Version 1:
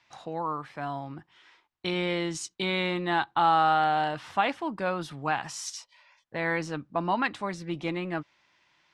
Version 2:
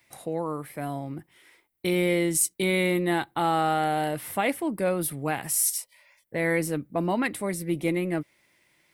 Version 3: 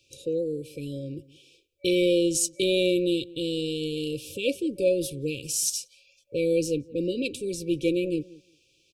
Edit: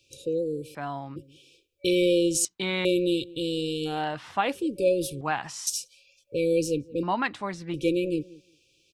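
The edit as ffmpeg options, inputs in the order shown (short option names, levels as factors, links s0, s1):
-filter_complex "[0:a]asplit=5[s0][s1][s2][s3][s4];[2:a]asplit=6[s5][s6][s7][s8][s9][s10];[s5]atrim=end=0.752[s11];[s0]atrim=start=0.748:end=1.162[s12];[s6]atrim=start=1.158:end=2.452[s13];[s1]atrim=start=2.448:end=2.852[s14];[s7]atrim=start=2.848:end=4.09[s15];[s2]atrim=start=3.85:end=4.63[s16];[s8]atrim=start=4.39:end=5.212[s17];[s3]atrim=start=5.208:end=5.672[s18];[s9]atrim=start=5.668:end=7.032[s19];[s4]atrim=start=7.028:end=7.742[s20];[s10]atrim=start=7.738[s21];[s11][s12]acrossfade=d=0.004:c1=hsin:c2=hsin[s22];[s22][s13]acrossfade=d=0.004:c1=hsin:c2=hsin[s23];[s23][s14]acrossfade=d=0.004:c1=hsin:c2=hsin[s24];[s24][s15]acrossfade=d=0.004:c1=hsin:c2=hsin[s25];[s25][s16]acrossfade=d=0.24:c1=tri:c2=tri[s26];[s26][s17]acrossfade=d=0.24:c1=tri:c2=tri[s27];[s27][s18]acrossfade=d=0.004:c1=hsin:c2=hsin[s28];[s28][s19]acrossfade=d=0.004:c1=hsin:c2=hsin[s29];[s29][s20]acrossfade=d=0.004:c1=hsin:c2=hsin[s30];[s30][s21]acrossfade=d=0.004:c1=hsin:c2=hsin"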